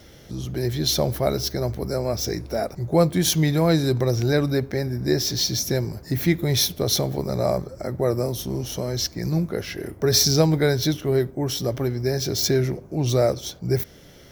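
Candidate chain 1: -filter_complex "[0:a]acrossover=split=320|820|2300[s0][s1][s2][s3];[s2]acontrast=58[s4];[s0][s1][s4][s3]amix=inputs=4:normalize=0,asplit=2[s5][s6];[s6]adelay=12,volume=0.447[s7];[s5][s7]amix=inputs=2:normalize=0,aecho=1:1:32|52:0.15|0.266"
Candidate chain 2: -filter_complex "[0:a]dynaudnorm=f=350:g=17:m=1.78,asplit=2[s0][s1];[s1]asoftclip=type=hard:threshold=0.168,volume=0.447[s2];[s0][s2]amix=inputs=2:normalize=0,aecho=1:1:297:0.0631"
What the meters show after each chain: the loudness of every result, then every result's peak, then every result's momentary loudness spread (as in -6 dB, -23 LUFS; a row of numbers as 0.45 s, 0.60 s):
-21.0 LUFS, -18.0 LUFS; -2.5 dBFS, -1.5 dBFS; 10 LU, 9 LU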